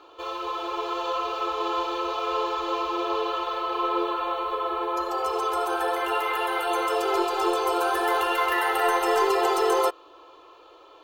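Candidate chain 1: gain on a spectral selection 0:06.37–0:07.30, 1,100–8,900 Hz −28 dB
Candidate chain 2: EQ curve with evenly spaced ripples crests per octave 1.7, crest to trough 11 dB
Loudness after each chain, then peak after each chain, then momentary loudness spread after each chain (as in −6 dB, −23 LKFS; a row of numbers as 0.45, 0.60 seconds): −25.5, −23.5 LKFS; −10.0, −7.0 dBFS; 6, 7 LU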